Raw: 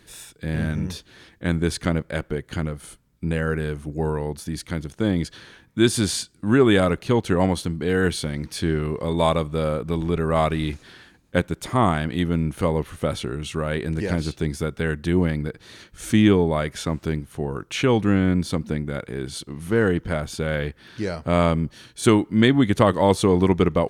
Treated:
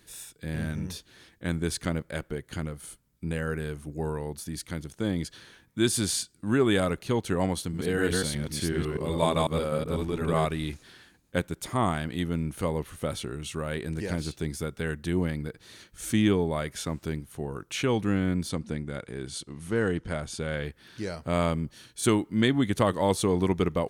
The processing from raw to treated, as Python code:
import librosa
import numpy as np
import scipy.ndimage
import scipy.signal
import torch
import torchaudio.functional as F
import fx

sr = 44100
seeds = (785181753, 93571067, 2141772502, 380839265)

y = fx.reverse_delay(x, sr, ms=124, wet_db=-1.0, at=(7.61, 10.45))
y = fx.lowpass(y, sr, hz=10000.0, slope=24, at=(18.49, 20.65))
y = fx.high_shelf(y, sr, hz=6100.0, db=9.0)
y = y * librosa.db_to_amplitude(-7.0)